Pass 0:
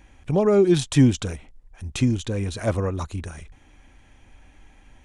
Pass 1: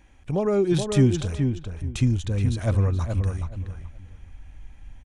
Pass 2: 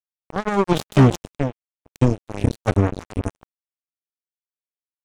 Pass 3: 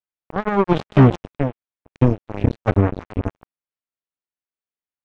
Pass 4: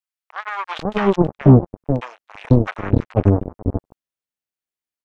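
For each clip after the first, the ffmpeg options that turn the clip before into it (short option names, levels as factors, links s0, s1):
-filter_complex "[0:a]asubboost=boost=4:cutoff=170,asplit=2[s0][s1];[s1]adelay=424,lowpass=f=2200:p=1,volume=0.531,asplit=2[s2][s3];[s3]adelay=424,lowpass=f=2200:p=1,volume=0.21,asplit=2[s4][s5];[s5]adelay=424,lowpass=f=2200:p=1,volume=0.21[s6];[s2][s4][s6]amix=inputs=3:normalize=0[s7];[s0][s7]amix=inputs=2:normalize=0,volume=0.631"
-af "acrusher=bits=2:mix=0:aa=0.5,volume=1.58"
-af "lowpass=2600,volume=1.19"
-filter_complex "[0:a]acrossover=split=950[s0][s1];[s0]adelay=490[s2];[s2][s1]amix=inputs=2:normalize=0,volume=1.26"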